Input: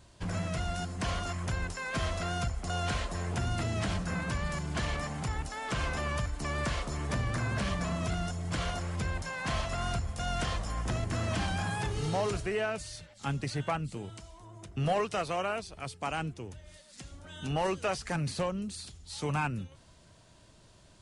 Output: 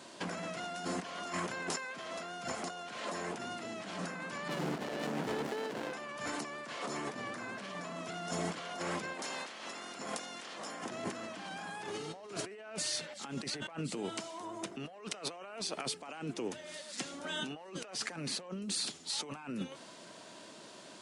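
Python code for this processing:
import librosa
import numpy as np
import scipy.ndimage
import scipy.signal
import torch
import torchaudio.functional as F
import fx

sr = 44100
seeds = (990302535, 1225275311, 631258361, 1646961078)

y = fx.running_max(x, sr, window=33, at=(4.48, 5.93))
y = fx.spec_clip(y, sr, under_db=19, at=(9.13, 10.83), fade=0.02)
y = scipy.signal.sosfilt(scipy.signal.butter(4, 220.0, 'highpass', fs=sr, output='sos'), y)
y = fx.high_shelf(y, sr, hz=9500.0, db=-6.5)
y = fx.over_compress(y, sr, threshold_db=-45.0, ratio=-1.0)
y = y * librosa.db_to_amplitude(3.5)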